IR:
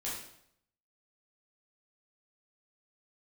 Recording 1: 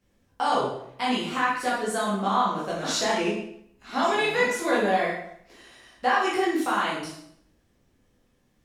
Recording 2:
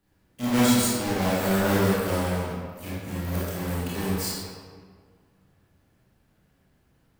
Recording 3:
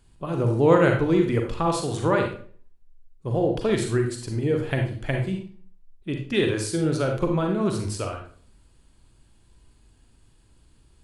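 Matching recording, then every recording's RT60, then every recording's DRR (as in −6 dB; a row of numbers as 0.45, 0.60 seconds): 1; 0.70, 1.8, 0.50 seconds; −7.0, −9.0, 2.5 decibels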